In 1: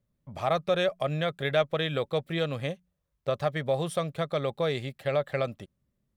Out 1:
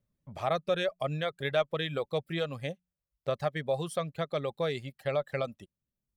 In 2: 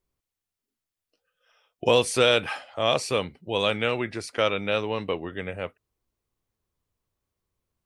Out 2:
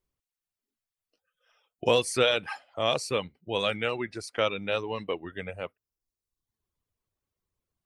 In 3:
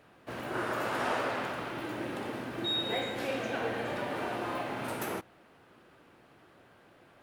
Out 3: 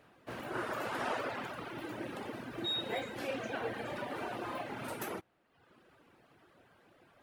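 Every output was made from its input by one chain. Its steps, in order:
reverb reduction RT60 0.89 s
level −2.5 dB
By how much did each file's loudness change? −3.5, −3.5, −4.5 LU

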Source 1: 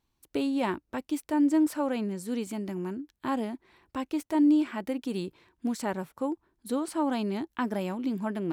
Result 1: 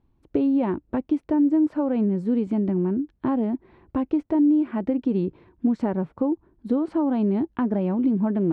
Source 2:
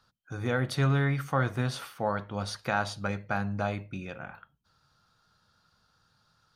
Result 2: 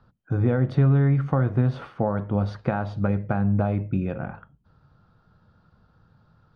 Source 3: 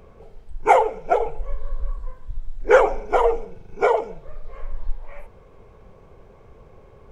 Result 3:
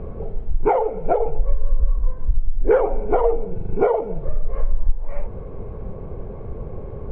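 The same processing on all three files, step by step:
downward compressor 3 to 1, threshold −32 dBFS
low-pass filter 3,000 Hz 12 dB per octave
tilt shelving filter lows +9 dB, about 900 Hz
loudness normalisation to −24 LKFS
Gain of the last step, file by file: +5.5, +6.5, +9.0 decibels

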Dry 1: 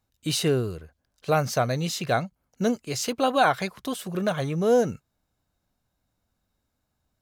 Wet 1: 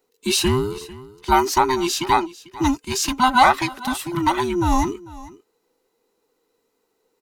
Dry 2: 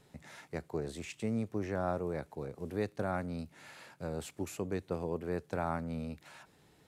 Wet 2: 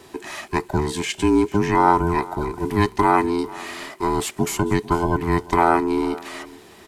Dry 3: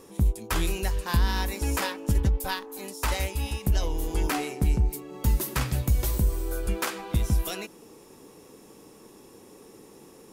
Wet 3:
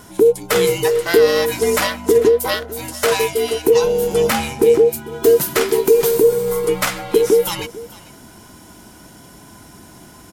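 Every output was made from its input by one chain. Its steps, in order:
frequency inversion band by band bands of 500 Hz
low-shelf EQ 170 Hz −8 dB
single-tap delay 446 ms −19.5 dB
normalise the peak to −2 dBFS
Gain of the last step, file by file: +7.0, +19.0, +11.0 decibels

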